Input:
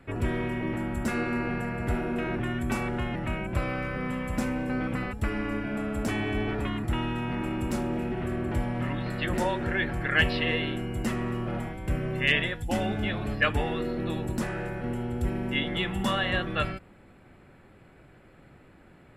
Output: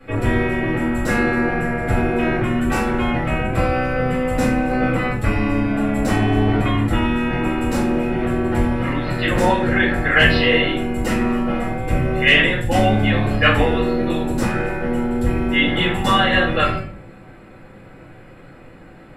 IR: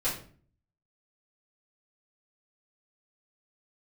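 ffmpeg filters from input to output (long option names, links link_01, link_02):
-filter_complex "[0:a]lowshelf=frequency=90:gain=-7.5[link_01];[1:a]atrim=start_sample=2205[link_02];[link_01][link_02]afir=irnorm=-1:irlink=0,volume=4dB"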